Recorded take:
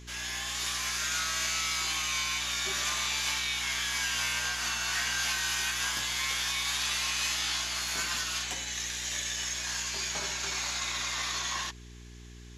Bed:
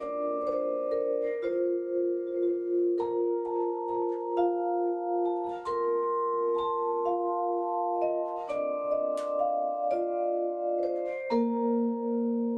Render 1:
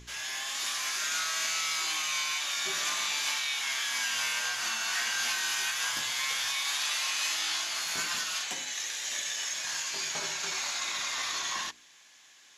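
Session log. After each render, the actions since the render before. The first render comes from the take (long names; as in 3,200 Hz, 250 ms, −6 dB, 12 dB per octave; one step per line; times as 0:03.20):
hum removal 60 Hz, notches 7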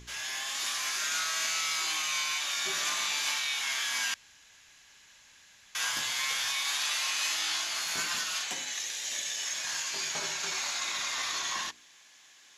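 0:04.14–0:05.75: fill with room tone
0:08.79–0:09.46: parametric band 1,300 Hz −4.5 dB 1.3 octaves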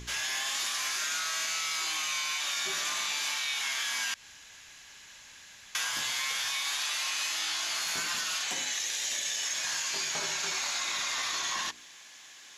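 in parallel at +0.5 dB: brickwall limiter −26.5 dBFS, peak gain reduction 7.5 dB
on the sum: downward compressor, threshold −29 dBFS, peak gain reduction 6 dB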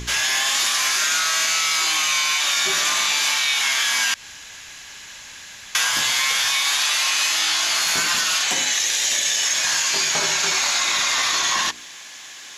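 level +12 dB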